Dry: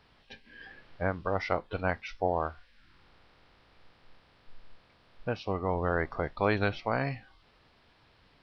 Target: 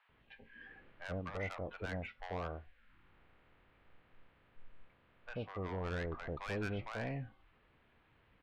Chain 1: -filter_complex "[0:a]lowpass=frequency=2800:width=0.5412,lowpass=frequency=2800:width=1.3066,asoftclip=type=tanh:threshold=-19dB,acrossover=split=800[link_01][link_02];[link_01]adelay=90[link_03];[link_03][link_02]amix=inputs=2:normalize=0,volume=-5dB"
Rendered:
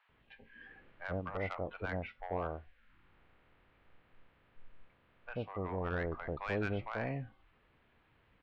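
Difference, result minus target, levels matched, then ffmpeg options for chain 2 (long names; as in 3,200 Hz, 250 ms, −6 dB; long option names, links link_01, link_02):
soft clipping: distortion −9 dB
-filter_complex "[0:a]lowpass=frequency=2800:width=0.5412,lowpass=frequency=2800:width=1.3066,asoftclip=type=tanh:threshold=-27.5dB,acrossover=split=800[link_01][link_02];[link_01]adelay=90[link_03];[link_03][link_02]amix=inputs=2:normalize=0,volume=-5dB"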